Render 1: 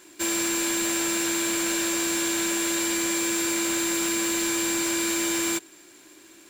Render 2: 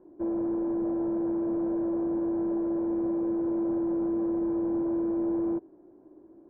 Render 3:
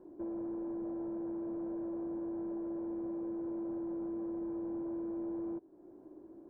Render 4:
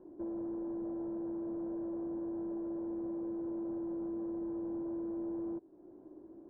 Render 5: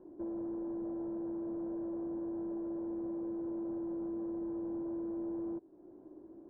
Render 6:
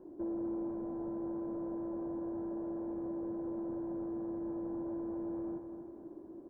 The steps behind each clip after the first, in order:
inverse Chebyshev low-pass filter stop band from 4,200 Hz, stop band 80 dB; level +1.5 dB
downward compressor 2 to 1, threshold −46 dBFS, peak gain reduction 11 dB
high-frequency loss of the air 450 metres; level +1 dB
no processing that can be heard
repeating echo 249 ms, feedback 55%, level −7 dB; level +2 dB

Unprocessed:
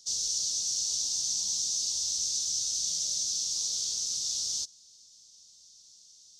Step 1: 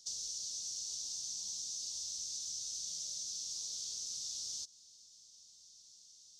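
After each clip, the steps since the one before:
downward compressor, threshold −35 dBFS, peak gain reduction 8 dB
level −4 dB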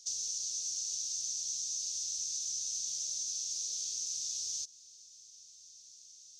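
thirty-one-band graphic EQ 200 Hz −11 dB, 400 Hz +6 dB, 1,000 Hz −9 dB, 2,500 Hz +8 dB, 6,300 Hz +7 dB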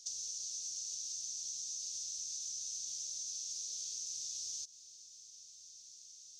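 downward compressor, threshold −39 dBFS, peak gain reduction 6.5 dB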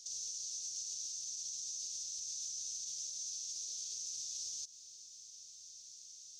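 brickwall limiter −35 dBFS, peak gain reduction 7.5 dB
level +1.5 dB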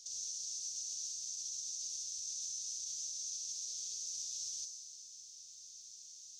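delay with a high-pass on its return 65 ms, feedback 75%, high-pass 4,800 Hz, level −6 dB
level −1 dB

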